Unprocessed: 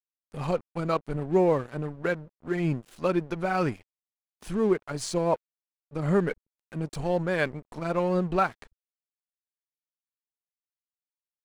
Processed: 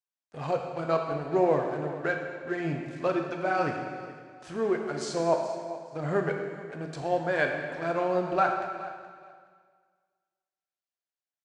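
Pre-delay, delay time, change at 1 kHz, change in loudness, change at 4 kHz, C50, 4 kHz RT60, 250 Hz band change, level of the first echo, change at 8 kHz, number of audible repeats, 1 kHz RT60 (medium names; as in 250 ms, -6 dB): 6 ms, 424 ms, +2.0 dB, -1.5 dB, -1.5 dB, 4.0 dB, 1.8 s, -4.0 dB, -16.0 dB, -3.5 dB, 2, 1.9 s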